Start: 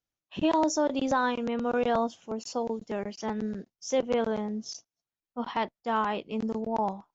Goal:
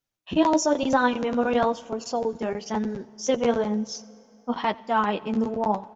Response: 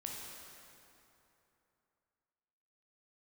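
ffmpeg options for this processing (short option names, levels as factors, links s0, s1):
-filter_complex "[0:a]flanger=delay=7.1:depth=6.5:regen=32:speed=0.85:shape=triangular,atempo=1.2,asplit=2[s0][s1];[1:a]atrim=start_sample=2205,adelay=89[s2];[s1][s2]afir=irnorm=-1:irlink=0,volume=0.112[s3];[s0][s3]amix=inputs=2:normalize=0,volume=2.66"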